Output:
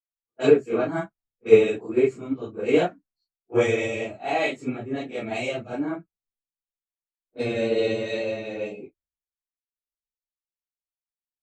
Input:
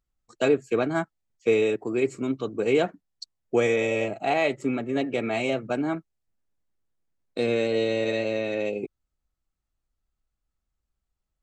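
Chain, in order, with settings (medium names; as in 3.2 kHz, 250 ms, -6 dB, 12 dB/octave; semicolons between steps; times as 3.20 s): phase randomisation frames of 100 ms; level-controlled noise filter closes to 710 Hz, open at -24 dBFS; three bands expanded up and down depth 100%; trim -1 dB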